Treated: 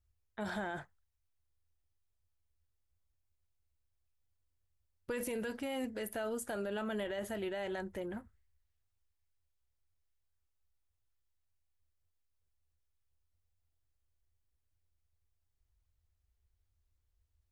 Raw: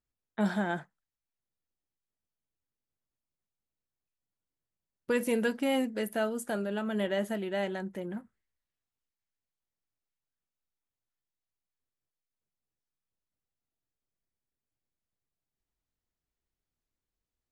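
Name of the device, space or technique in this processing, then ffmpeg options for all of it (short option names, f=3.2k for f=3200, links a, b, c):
car stereo with a boomy subwoofer: -af "lowshelf=f=120:t=q:w=3:g=12.5,alimiter=level_in=6.5dB:limit=-24dB:level=0:latency=1:release=40,volume=-6.5dB"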